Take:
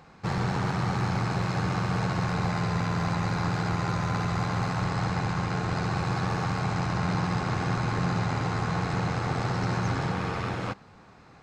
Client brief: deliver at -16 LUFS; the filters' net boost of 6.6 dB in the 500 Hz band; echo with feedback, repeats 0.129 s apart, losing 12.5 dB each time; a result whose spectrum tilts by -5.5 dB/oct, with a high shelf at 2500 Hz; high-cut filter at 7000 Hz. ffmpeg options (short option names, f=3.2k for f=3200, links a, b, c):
-af "lowpass=7k,equalizer=f=500:t=o:g=8,highshelf=f=2.5k:g=4,aecho=1:1:129|258|387:0.237|0.0569|0.0137,volume=10.5dB"